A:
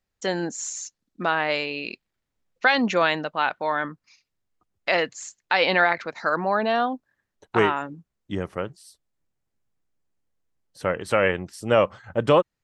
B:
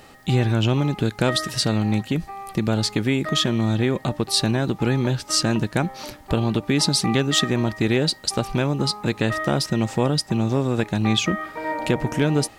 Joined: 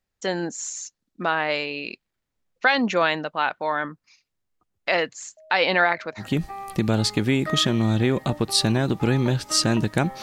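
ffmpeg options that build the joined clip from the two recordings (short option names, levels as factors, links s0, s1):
-filter_complex "[0:a]asettb=1/sr,asplit=3[s0][s1][s2];[s0]atrim=end=5.374[s3];[s1]atrim=start=5.37:end=6.27,asetpts=PTS-STARTPTS,afade=t=in:d=0.004:c=qsin,afade=t=out:st=0.896:d=0.004:c=qsin,aeval=exprs='val(0)+0.00447*sin(2*PI*630*n/s)':c=same[s4];[s2]atrim=start=6.266[s5];[s3][s4]acrossfade=d=0.004:c1=hsin:c2=qsin[s6];[s6][s5]acrossfade=d=0.004:c1=qsin:c2=hsin,apad=whole_dur=10.22,atrim=end=10.22,atrim=end=6.27,asetpts=PTS-STARTPTS[s7];[1:a]atrim=start=1.96:end=6.01,asetpts=PTS-STARTPTS[s8];[s7][s8]acrossfade=d=0.1:c1=tri:c2=tri"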